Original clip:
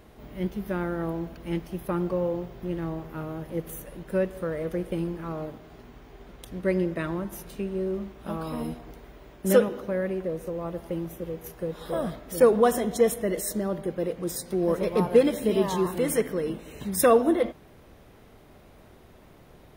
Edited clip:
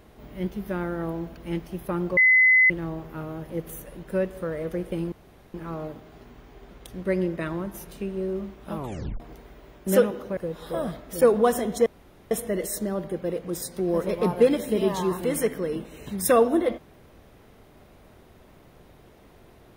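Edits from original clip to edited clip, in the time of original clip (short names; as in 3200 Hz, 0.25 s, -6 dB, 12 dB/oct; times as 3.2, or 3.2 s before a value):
2.17–2.7 bleep 2030 Hz -13.5 dBFS
5.12 insert room tone 0.42 s
8.34 tape stop 0.44 s
9.95–11.56 cut
13.05 insert room tone 0.45 s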